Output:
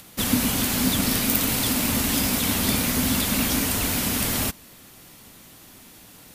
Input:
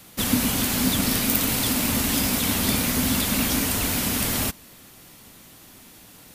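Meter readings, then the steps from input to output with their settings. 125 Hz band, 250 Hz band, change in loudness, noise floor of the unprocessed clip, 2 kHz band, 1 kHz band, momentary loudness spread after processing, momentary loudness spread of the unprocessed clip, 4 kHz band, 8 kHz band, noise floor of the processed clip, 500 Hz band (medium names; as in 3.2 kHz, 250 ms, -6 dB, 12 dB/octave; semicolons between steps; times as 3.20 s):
0.0 dB, 0.0 dB, 0.0 dB, -48 dBFS, 0.0 dB, 0.0 dB, 2 LU, 2 LU, 0.0 dB, 0.0 dB, -48 dBFS, 0.0 dB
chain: upward compressor, threshold -45 dBFS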